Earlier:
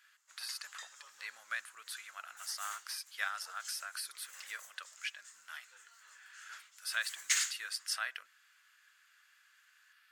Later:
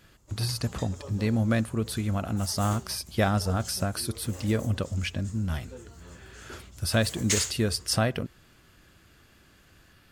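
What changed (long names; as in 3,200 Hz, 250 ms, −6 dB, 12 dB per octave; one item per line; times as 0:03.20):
background −4.0 dB
master: remove four-pole ladder high-pass 1,300 Hz, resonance 45%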